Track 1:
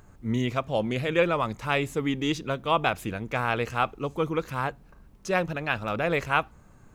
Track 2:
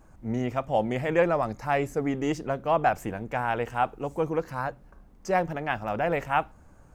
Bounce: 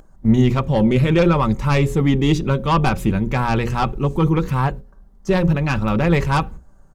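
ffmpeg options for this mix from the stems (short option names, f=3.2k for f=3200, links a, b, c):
-filter_complex "[0:a]aecho=1:1:5.3:0.34,aeval=exprs='0.422*(cos(1*acos(clip(val(0)/0.422,-1,1)))-cos(1*PI/2))+0.188*(cos(5*acos(clip(val(0)/0.422,-1,1)))-cos(5*PI/2))':c=same,lowshelf=f=400:g=11,volume=-5.5dB[a];[1:a]equalizer=f=2.4k:t=o:w=0.38:g=-13,aecho=1:1:5.1:0.38,adelay=1.1,volume=-1.5dB,asplit=2[b][c];[c]apad=whole_len=306408[d];[a][d]sidechaingate=range=-33dB:threshold=-42dB:ratio=16:detection=peak[e];[e][b]amix=inputs=2:normalize=0,lowshelf=f=65:g=9,bandreject=f=60:t=h:w=6,bandreject=f=120:t=h:w=6,bandreject=f=180:t=h:w=6,bandreject=f=240:t=h:w=6,bandreject=f=300:t=h:w=6,bandreject=f=360:t=h:w=6,bandreject=f=420:t=h:w=6,bandreject=f=480:t=h:w=6,bandreject=f=540:t=h:w=6"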